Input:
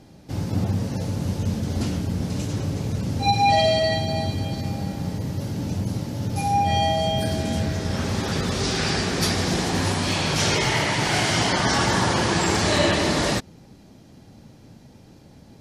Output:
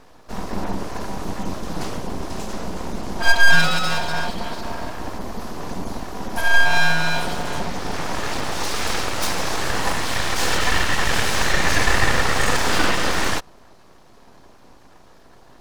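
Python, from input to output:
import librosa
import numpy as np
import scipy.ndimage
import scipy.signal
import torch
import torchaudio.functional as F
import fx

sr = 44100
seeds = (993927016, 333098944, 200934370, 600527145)

y = fx.peak_eq(x, sr, hz=880.0, db=11.0, octaves=0.75)
y = y + 0.41 * np.pad(y, (int(2.2 * sr / 1000.0), 0))[:len(y)]
y = np.abs(y)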